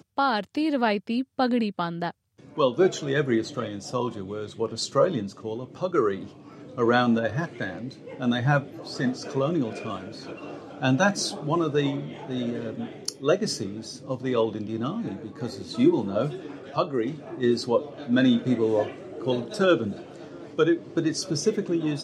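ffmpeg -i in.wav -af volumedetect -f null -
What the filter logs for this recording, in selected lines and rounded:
mean_volume: -26.2 dB
max_volume: -8.0 dB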